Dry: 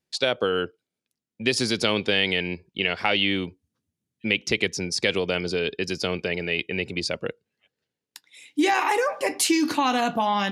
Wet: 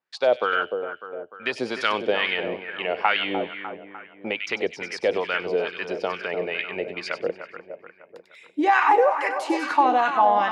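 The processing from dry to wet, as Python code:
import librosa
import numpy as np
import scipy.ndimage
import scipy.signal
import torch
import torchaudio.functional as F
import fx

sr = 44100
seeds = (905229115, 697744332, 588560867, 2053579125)

y = fx.echo_split(x, sr, split_hz=2100.0, low_ms=300, high_ms=96, feedback_pct=52, wet_db=-8)
y = fx.wah_lfo(y, sr, hz=2.3, low_hz=590.0, high_hz=1500.0, q=2.2)
y = y * 10.0 ** (8.5 / 20.0)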